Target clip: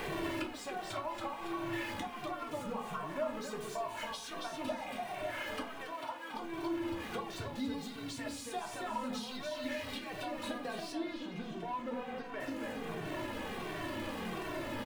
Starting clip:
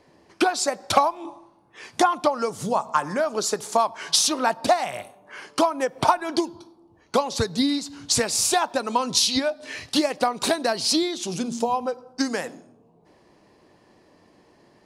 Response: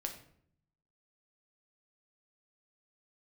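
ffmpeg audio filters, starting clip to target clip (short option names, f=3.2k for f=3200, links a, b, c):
-filter_complex "[0:a]aeval=exprs='val(0)+0.5*0.075*sgn(val(0))':c=same,aecho=1:1:278|556|834|1112|1390:0.562|0.208|0.077|0.0285|0.0105,acompressor=threshold=-33dB:ratio=5,asettb=1/sr,asplit=3[a][b][c];[a]atrim=end=5.844[d];[b]atrim=start=5.84:end=6.34,asetpts=PTS-STARTPTS,afade=t=in:d=0.004:c=qsin,afade=t=out:st=0.496:d=0.004:c=qsin,highpass=f=820:p=1[e];[c]atrim=start=6.336[f];[d][e]acrossfade=d=0.004:c1=hsin:c2=qsin[g];[g][f]acrossfade=d=0.004:c1=qsin:c2=hsin,asettb=1/sr,asplit=3[h][i][j];[h]atrim=end=10.924[k];[i]atrim=start=10.92:end=12.4,asetpts=PTS-STARTPTS,afade=t=in:d=0.004:c=qsin,afade=t=out:st=1.476:d=0.004:c=qsin,acrossover=split=3800[l][m];[m]acompressor=threshold=-54dB:ratio=4:attack=1:release=60[n];[l][n]amix=inputs=2:normalize=0[o];[j]atrim=start=12.396[p];[k][o]acrossfade=d=0.004:c1=hsin:c2=qsin[q];[q][p]acrossfade=d=0.004:c1=qsin:c2=hsin,highshelf=f=3.9k:t=q:w=1.5:g=-7.5[r];[1:a]atrim=start_sample=2205,afade=t=out:st=0.32:d=0.01,atrim=end_sample=14553,asetrate=83790,aresample=44100[s];[r][s]afir=irnorm=-1:irlink=0,asplit=2[t][u];[u]adelay=2.1,afreqshift=-1.4[v];[t][v]amix=inputs=2:normalize=1,volume=3dB"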